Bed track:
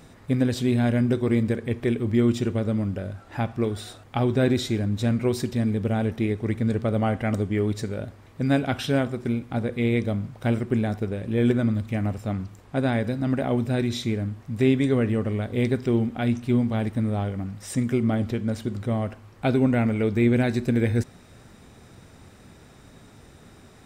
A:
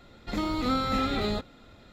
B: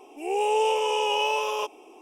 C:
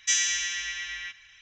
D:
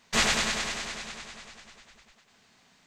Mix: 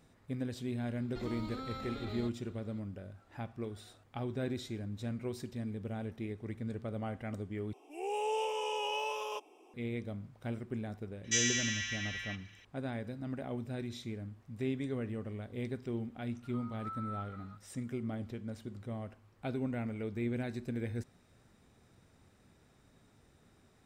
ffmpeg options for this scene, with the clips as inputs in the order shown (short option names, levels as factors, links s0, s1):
-filter_complex "[1:a]asplit=2[s0][s1];[0:a]volume=0.168[s2];[s0]alimiter=level_in=1.12:limit=0.0631:level=0:latency=1:release=71,volume=0.891[s3];[3:a]highshelf=f=7700:g=-5[s4];[s1]bandpass=f=1300:t=q:w=8:csg=0[s5];[s2]asplit=2[s6][s7];[s6]atrim=end=7.734[s8];[2:a]atrim=end=2.01,asetpts=PTS-STARTPTS,volume=0.282[s9];[s7]atrim=start=9.736[s10];[s3]atrim=end=1.92,asetpts=PTS-STARTPTS,volume=0.299,afade=t=in:d=0.004:c=hsin,afade=t=out:st=1.916:d=0.004:c=hsin,adelay=880[s11];[s4]atrim=end=1.41,asetpts=PTS-STARTPTS,volume=0.562,afade=t=in:d=0.004:c=hsin,afade=t=out:st=1.406:d=0.004:c=hsin,adelay=11240[s12];[s5]atrim=end=1.92,asetpts=PTS-STARTPTS,volume=0.266,afade=t=in:d=0.004:c=hsin,afade=t=out:st=1.916:d=0.004:c=hsin,adelay=16160[s13];[s8][s9]acrossfade=d=0.004:c1=hsin:c2=hsin[s14];[s14][s10]acrossfade=d=0.004:c1=hsin:c2=hsin[s15];[s15][s11][s12][s13]amix=inputs=4:normalize=0"